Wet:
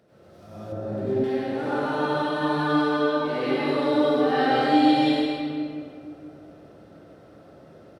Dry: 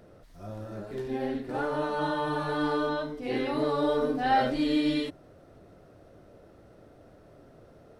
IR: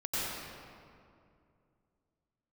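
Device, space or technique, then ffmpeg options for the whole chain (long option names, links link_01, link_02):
PA in a hall: -filter_complex "[0:a]highpass=110,equalizer=frequency=3700:width_type=o:width=1.6:gain=3.5,aecho=1:1:159:0.398[link_01];[1:a]atrim=start_sample=2205[link_02];[link_01][link_02]afir=irnorm=-1:irlink=0,asettb=1/sr,asplit=3[link_03][link_04][link_05];[link_03]atrim=end=0.724[link_06];[link_04]atrim=start=0.72:end=1.24,asetpts=PTS-STARTPTS,afade=type=in:duration=0.004:curve=qsin,afade=type=out:start_time=0.516:duration=0.004:curve=qsin,tiltshelf=frequency=970:gain=6.5[link_07];[link_05]atrim=start=1.236[link_08];[link_06][link_07]acrossfade=duration=0.004:curve1=hsin:curve2=qsin[link_09];[link_09][link_08]acrossfade=duration=0.004:curve1=qsin:curve2=hsin,volume=-3dB"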